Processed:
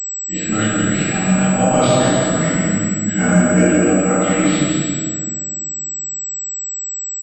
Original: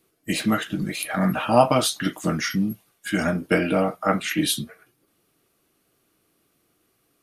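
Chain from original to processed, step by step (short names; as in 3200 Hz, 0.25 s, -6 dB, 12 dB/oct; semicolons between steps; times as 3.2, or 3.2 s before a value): transient shaper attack -10 dB, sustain +5 dB; rotary speaker horn 0.85 Hz, later 7.5 Hz, at 3.83; bouncing-ball echo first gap 0.17 s, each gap 0.75×, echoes 5; reverb RT60 1.8 s, pre-delay 4 ms, DRR -12 dB; pulse-width modulation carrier 7800 Hz; gain -5.5 dB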